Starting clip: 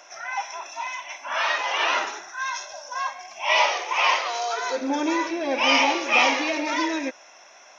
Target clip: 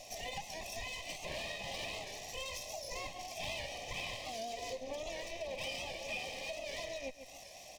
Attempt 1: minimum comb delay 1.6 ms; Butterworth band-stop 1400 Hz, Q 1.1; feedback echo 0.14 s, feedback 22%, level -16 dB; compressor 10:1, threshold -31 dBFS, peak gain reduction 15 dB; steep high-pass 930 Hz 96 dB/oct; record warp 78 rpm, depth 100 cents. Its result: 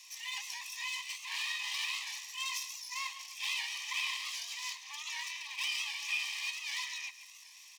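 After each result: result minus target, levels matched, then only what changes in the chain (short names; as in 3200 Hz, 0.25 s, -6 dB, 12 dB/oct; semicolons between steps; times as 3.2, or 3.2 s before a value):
compressor: peak gain reduction -7 dB; 1000 Hz band -6.5 dB
change: compressor 10:1, threshold -39 dBFS, peak gain reduction 22 dB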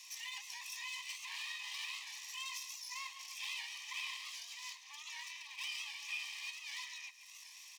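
1000 Hz band -6.5 dB
remove: steep high-pass 930 Hz 96 dB/oct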